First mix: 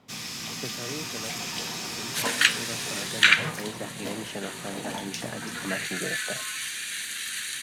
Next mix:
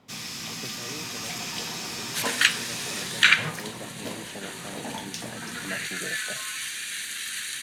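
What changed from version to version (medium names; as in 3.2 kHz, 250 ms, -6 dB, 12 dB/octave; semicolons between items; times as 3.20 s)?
speech -5.0 dB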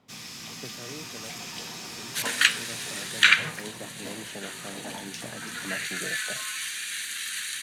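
first sound -5.0 dB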